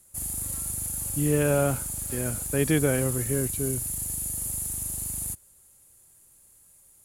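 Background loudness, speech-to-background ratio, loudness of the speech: -29.5 LUFS, 2.5 dB, -27.0 LUFS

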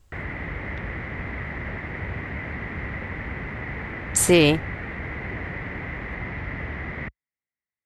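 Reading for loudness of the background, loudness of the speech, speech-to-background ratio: -32.5 LUFS, -19.0 LUFS, 13.5 dB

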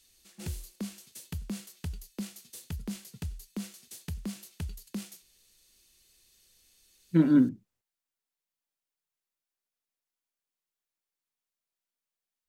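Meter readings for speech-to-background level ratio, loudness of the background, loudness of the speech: 16.5 dB, -41.0 LUFS, -24.5 LUFS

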